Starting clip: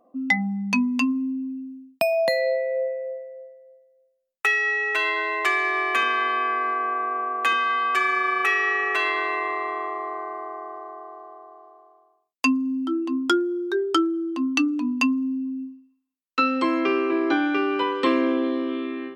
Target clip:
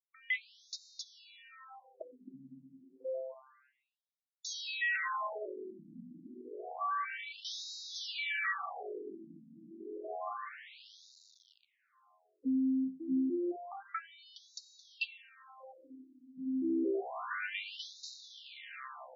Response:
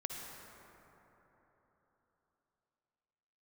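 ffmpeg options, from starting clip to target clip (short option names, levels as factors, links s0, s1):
-filter_complex "[0:a]asettb=1/sr,asplit=3[s0][s1][s2];[s0]atrim=end=3.344[s3];[s1]atrim=start=3.34:end=4.56,asetpts=PTS-STARTPTS,afade=t=in:d=0.004:c=qsin,afade=t=out:st=1.216:d=0.004:c=qsin,aemphasis=mode=production:type=riaa[s4];[s2]atrim=start=4.556[s5];[s3][s4]acrossfade=d=0.004:c1=hsin:c2=qsin[s6];[s6][s5]acrossfade=d=0.004:c1=qsin:c2=hsin,asettb=1/sr,asplit=3[s7][s8][s9];[s7]atrim=end=13.304[s10];[s8]atrim=start=13.3:end=14.91,asetpts=PTS-STARTPTS,afade=t=in:d=0.004:c=qsin,afade=t=out:st=1.606:d=0.004:c=qsin,acompressor=threshold=0.0501:ratio=5[s11];[s9]atrim=start=14.906[s12];[s10][s11]acrossfade=d=0.004:c1=hsin:c2=qsin[s13];[s13][s12]acrossfade=d=0.004:c1=qsin:c2=hsin,aeval=exprs='val(0)*gte(abs(val(0)),0.0119)':c=same,aeval=exprs='(tanh(25.1*val(0)+0.7)-tanh(0.7))/25.1':c=same,asplit=2[s14][s15];[1:a]atrim=start_sample=2205[s16];[s15][s16]afir=irnorm=-1:irlink=0,volume=0.355[s17];[s14][s17]amix=inputs=2:normalize=0,afftfilt=real='re*between(b*sr/1024,210*pow(5200/210,0.5+0.5*sin(2*PI*0.29*pts/sr))/1.41,210*pow(5200/210,0.5+0.5*sin(2*PI*0.29*pts/sr))*1.41)':imag='im*between(b*sr/1024,210*pow(5200/210,0.5+0.5*sin(2*PI*0.29*pts/sr))/1.41,210*pow(5200/210,0.5+0.5*sin(2*PI*0.29*pts/sr))*1.41)':win_size=1024:overlap=0.75,volume=0.794"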